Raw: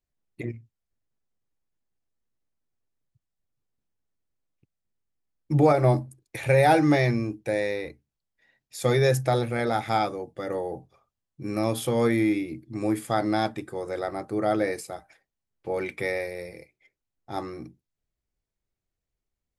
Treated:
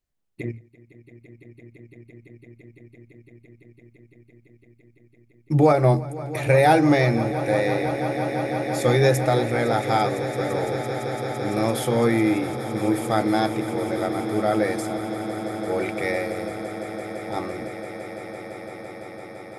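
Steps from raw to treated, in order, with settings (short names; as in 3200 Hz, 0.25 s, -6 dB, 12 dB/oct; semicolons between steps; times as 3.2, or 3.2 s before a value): swelling echo 0.169 s, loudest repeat 8, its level -16 dB; gain +2.5 dB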